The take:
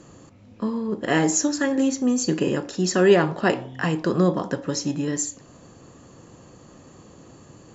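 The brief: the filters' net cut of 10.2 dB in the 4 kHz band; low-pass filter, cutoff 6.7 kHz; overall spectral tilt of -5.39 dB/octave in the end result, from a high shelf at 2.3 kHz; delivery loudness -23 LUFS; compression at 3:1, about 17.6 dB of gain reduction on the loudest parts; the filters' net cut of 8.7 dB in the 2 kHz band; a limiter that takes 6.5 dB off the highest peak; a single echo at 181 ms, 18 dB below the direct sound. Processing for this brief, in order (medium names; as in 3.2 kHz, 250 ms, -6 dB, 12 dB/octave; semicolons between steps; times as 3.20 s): low-pass 6.7 kHz; peaking EQ 2 kHz -7.5 dB; treble shelf 2.3 kHz -5 dB; peaking EQ 4 kHz -6 dB; compression 3:1, threshold -36 dBFS; peak limiter -29 dBFS; delay 181 ms -18 dB; trim +17 dB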